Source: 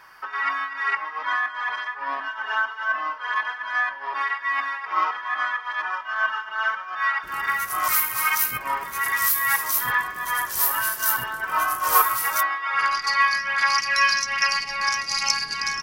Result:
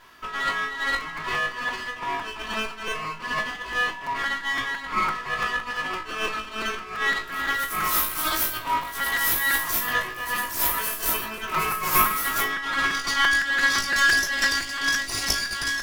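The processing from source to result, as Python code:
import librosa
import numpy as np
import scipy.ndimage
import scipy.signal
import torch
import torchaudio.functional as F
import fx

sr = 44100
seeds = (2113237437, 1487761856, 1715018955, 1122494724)

y = fx.lower_of_two(x, sr, delay_ms=3.0)
y = fx.room_flutter(y, sr, wall_m=3.2, rt60_s=0.22)
y = fx.buffer_crackle(y, sr, first_s=1.0, period_s=0.17, block=256, kind='repeat')
y = y * librosa.db_to_amplitude(-2.0)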